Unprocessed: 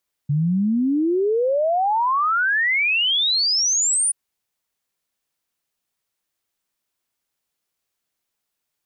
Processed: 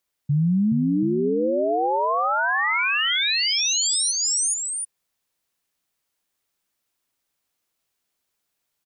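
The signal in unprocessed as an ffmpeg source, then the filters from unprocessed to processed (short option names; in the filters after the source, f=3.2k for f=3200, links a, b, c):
-f lavfi -i "aevalsrc='0.15*clip(min(t,3.83-t)/0.01,0,1)*sin(2*PI*140*3.83/log(9700/140)*(exp(log(9700/140)*t/3.83)-1))':d=3.83:s=44100"
-filter_complex "[0:a]asplit=2[a][b];[b]aecho=0:1:423|731:0.631|0.376[c];[a][c]amix=inputs=2:normalize=0,alimiter=limit=-15dB:level=0:latency=1:release=158"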